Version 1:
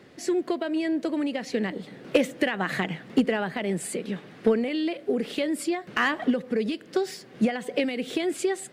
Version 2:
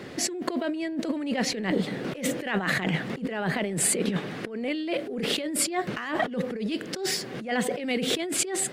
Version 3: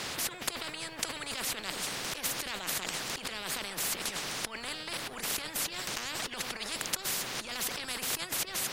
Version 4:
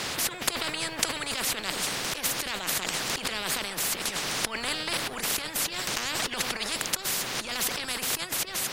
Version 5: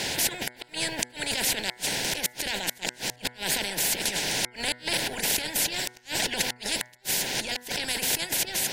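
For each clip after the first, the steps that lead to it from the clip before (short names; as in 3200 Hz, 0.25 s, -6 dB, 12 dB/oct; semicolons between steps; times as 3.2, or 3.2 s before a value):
negative-ratio compressor -34 dBFS, ratio -1; gain +5 dB
spectral compressor 10:1
vocal rider 0.5 s; gain +5.5 dB
flipped gate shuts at -14 dBFS, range -34 dB; Butterworth band-stop 1200 Hz, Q 2.4; de-hum 122.8 Hz, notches 18; gain +3 dB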